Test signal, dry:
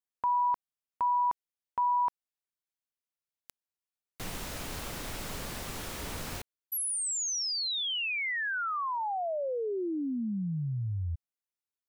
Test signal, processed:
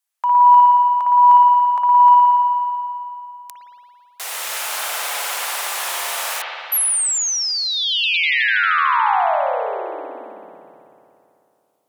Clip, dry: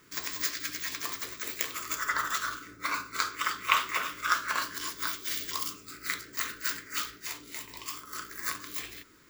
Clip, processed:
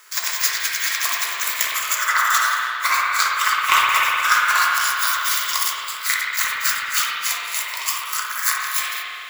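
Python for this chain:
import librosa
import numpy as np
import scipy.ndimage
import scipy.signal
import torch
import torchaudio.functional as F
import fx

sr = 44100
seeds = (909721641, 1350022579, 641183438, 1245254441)

p1 = scipy.signal.sosfilt(scipy.signal.butter(4, 670.0, 'highpass', fs=sr, output='sos'), x)
p2 = fx.peak_eq(p1, sr, hz=11000.0, db=6.5, octaves=1.5)
p3 = fx.rider(p2, sr, range_db=4, speed_s=0.5)
p4 = p2 + (p3 * librosa.db_to_amplitude(2.0))
p5 = 10.0 ** (-8.5 / 20.0) * np.tanh(p4 / 10.0 ** (-8.5 / 20.0))
p6 = fx.rev_spring(p5, sr, rt60_s=2.7, pass_ms=(55,), chirp_ms=80, drr_db=-3.0)
y = p6 * librosa.db_to_amplitude(3.0)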